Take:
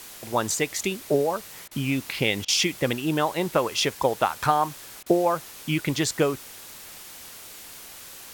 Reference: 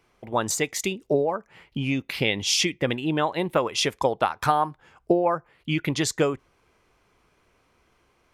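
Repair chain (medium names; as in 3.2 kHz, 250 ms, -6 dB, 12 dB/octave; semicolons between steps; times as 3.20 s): interpolate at 1.68/2.45/5.03 s, 31 ms; noise print and reduce 22 dB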